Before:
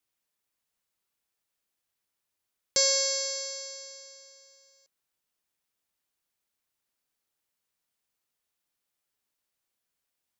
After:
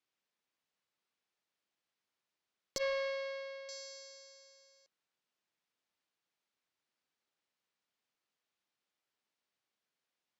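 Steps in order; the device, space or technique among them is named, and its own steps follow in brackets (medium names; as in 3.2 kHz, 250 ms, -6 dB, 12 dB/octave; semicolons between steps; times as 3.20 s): valve radio (band-pass 140–4800 Hz; valve stage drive 20 dB, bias 0.35; transformer saturation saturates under 810 Hz); 2.78–3.69 s: low-pass 2.9 kHz 24 dB/octave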